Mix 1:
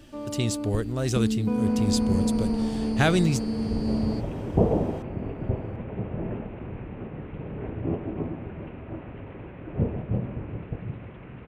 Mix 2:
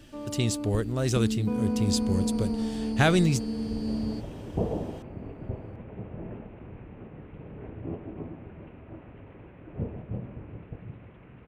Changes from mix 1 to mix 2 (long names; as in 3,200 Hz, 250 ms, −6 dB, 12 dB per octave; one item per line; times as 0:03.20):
second sound −6.0 dB
reverb: off